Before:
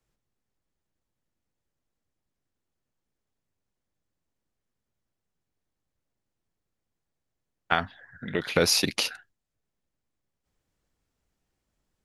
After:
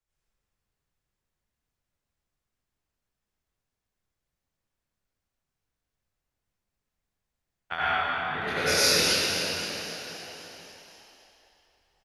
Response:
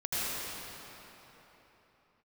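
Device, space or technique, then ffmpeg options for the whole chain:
cathedral: -filter_complex "[1:a]atrim=start_sample=2205[a];[0:a][a]afir=irnorm=-1:irlink=0,asettb=1/sr,asplit=3[b][c][d];[b]atrim=end=7.754[e];[c]atrim=start=7.75:end=9.13,asetpts=PTS-STARTPTS,afade=t=in:d=0.004:c=qsin,afade=t=out:st=1.376:d=0.004:c=qsin,asplit=2[f][g];[g]adelay=27,volume=-3.5dB[h];[f][h]amix=inputs=2:normalize=0,atrim=end_sample=60858[i];[d]atrim=start=9.126[j];[e][i]acrossfade=d=0.004:c1=hsin:c2=qsin[k];[k][j]acrossfade=d=0.004:c1=qsin:c2=hsin,equalizer=f=240:w=0.47:g=-8.5,asplit=9[l][m][n][o][p][q][r][s][t];[m]adelay=263,afreqshift=48,volume=-12dB[u];[n]adelay=526,afreqshift=96,volume=-15.7dB[v];[o]adelay=789,afreqshift=144,volume=-19.5dB[w];[p]adelay=1052,afreqshift=192,volume=-23.2dB[x];[q]adelay=1315,afreqshift=240,volume=-27dB[y];[r]adelay=1578,afreqshift=288,volume=-30.7dB[z];[s]adelay=1841,afreqshift=336,volume=-34.5dB[aa];[t]adelay=2104,afreqshift=384,volume=-38.2dB[ab];[l][u][v][w][x][y][z][aa][ab]amix=inputs=9:normalize=0,volume=-5.5dB"

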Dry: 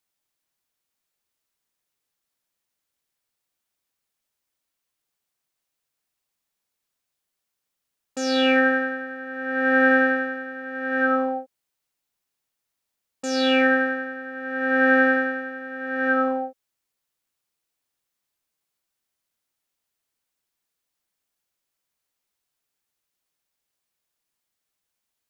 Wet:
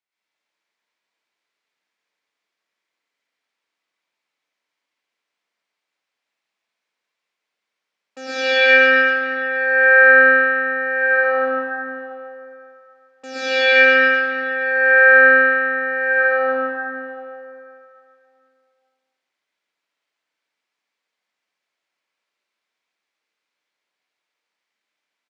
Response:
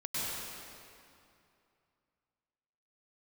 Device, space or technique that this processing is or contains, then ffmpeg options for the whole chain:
station announcement: -filter_complex "[0:a]highpass=340,lowpass=4.3k,equalizer=f=2.1k:t=o:w=0.55:g=5,aecho=1:1:81.63|139.9:0.251|0.562[a];[1:a]atrim=start_sample=2205[b];[a][b]afir=irnorm=-1:irlink=0,volume=-1dB"

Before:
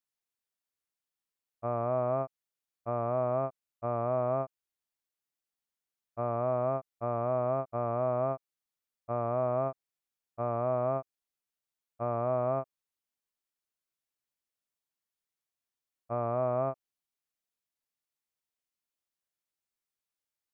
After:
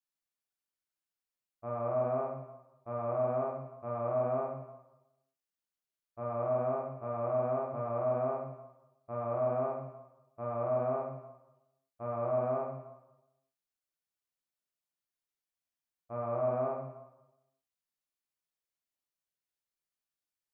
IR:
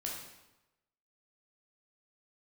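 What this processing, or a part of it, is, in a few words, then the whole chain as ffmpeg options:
bathroom: -filter_complex "[1:a]atrim=start_sample=2205[a];[0:a][a]afir=irnorm=-1:irlink=0,volume=-4dB"

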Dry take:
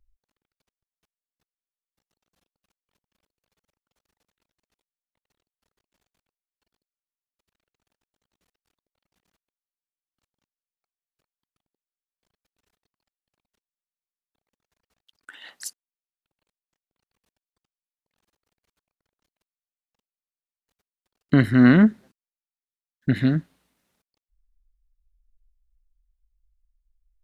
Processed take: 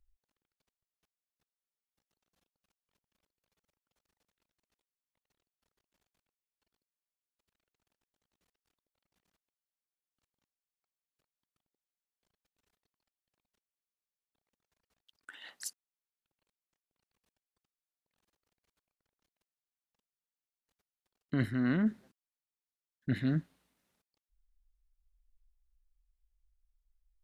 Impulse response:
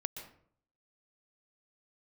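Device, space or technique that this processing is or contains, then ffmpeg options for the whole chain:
compression on the reversed sound: -af "areverse,acompressor=threshold=-20dB:ratio=10,areverse,volume=-6dB"

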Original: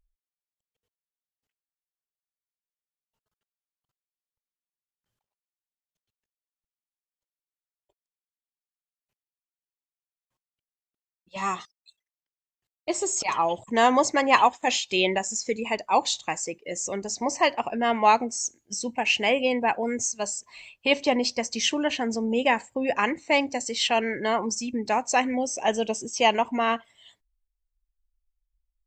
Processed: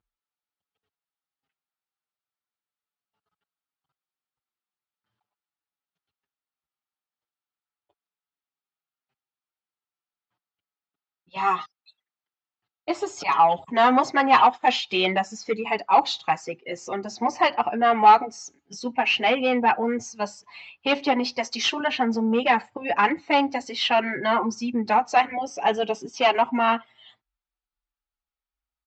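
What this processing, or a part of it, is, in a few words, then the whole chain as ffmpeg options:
barber-pole flanger into a guitar amplifier: -filter_complex "[0:a]asettb=1/sr,asplit=3[a][b][c];[a]atrim=end=21.374[d];[b]atrim=start=21.37:end=21.8,asetpts=PTS-STARTPTS,afade=t=in:d=0.004:c=qsin,afade=t=out:st=0.426:d=0.004:c=qsin,bass=f=250:g=-7,treble=f=4k:g=7[e];[c]atrim=start=21.796[f];[d][e]acrossfade=d=0.004:c1=hsin:c2=qsin[g];[g][f]acrossfade=d=0.004:c1=qsin:c2=hsin,asplit=2[h][i];[i]adelay=6.3,afreqshift=-0.4[j];[h][j]amix=inputs=2:normalize=1,asoftclip=type=tanh:threshold=-18dB,highpass=96,equalizer=f=560:t=q:w=4:g=-4,equalizer=f=800:t=q:w=4:g=6,equalizer=f=1.3k:t=q:w=4:g=8,lowpass=f=4.5k:w=0.5412,lowpass=f=4.5k:w=1.3066,volume=5.5dB"

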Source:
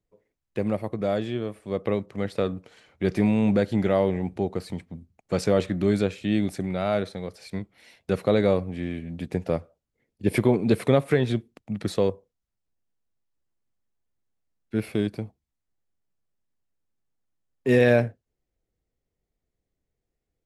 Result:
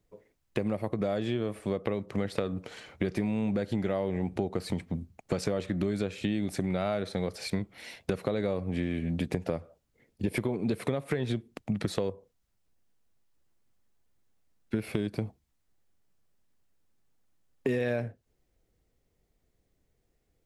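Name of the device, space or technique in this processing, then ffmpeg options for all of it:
serial compression, peaks first: -af "acompressor=threshold=-30dB:ratio=6,acompressor=threshold=-37dB:ratio=2,volume=8dB"

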